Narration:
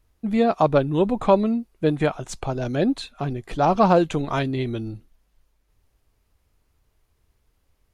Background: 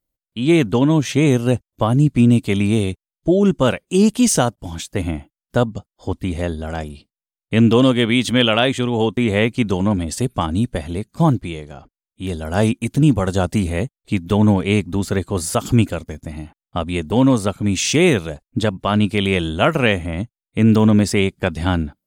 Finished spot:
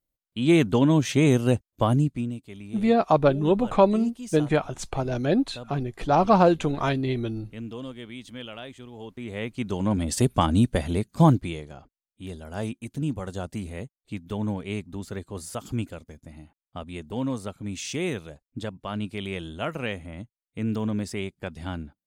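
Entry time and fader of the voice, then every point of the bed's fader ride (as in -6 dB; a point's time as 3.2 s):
2.50 s, -1.0 dB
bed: 1.93 s -4.5 dB
2.41 s -23.5 dB
8.97 s -23.5 dB
10.19 s -1 dB
11.16 s -1 dB
12.51 s -14.5 dB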